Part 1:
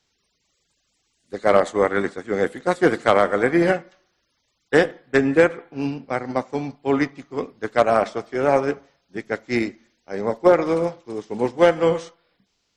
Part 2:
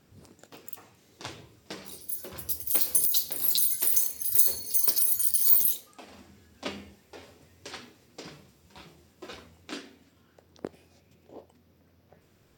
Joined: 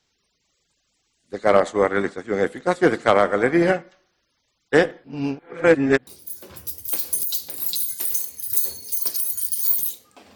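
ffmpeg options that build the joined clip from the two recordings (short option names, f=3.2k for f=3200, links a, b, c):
-filter_complex "[0:a]apad=whole_dur=10.35,atrim=end=10.35,asplit=2[a][b];[a]atrim=end=5.042[c];[b]atrim=start=5.038:end=6.072,asetpts=PTS-STARTPTS,areverse[d];[1:a]atrim=start=1.888:end=6.17[e];[c][d]acrossfade=d=0.004:c1=hsin:c2=hsin[f];[f][e]acrossfade=d=0.004:c1=hsin:c2=hsin"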